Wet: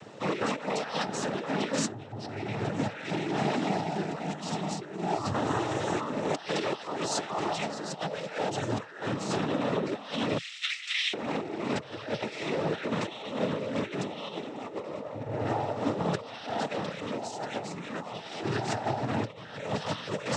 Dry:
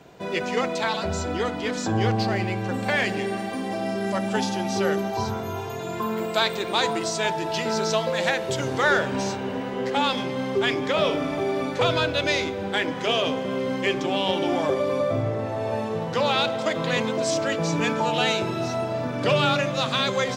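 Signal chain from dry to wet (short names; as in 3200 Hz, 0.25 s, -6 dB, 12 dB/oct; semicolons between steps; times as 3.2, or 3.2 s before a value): 10.37–11.13 steep high-pass 2200 Hz 36 dB/oct; negative-ratio compressor -29 dBFS, ratio -0.5; noise vocoder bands 12; gain -2 dB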